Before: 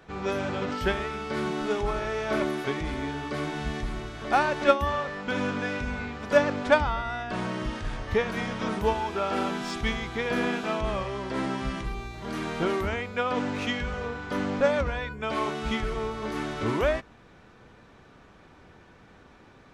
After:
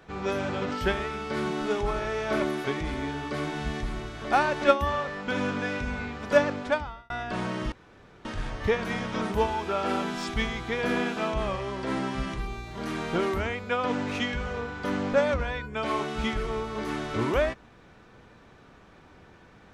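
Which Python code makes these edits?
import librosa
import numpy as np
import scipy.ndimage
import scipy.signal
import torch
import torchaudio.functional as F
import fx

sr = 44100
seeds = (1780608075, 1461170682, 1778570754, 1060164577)

y = fx.edit(x, sr, fx.fade_out_span(start_s=6.37, length_s=0.73),
    fx.insert_room_tone(at_s=7.72, length_s=0.53), tone=tone)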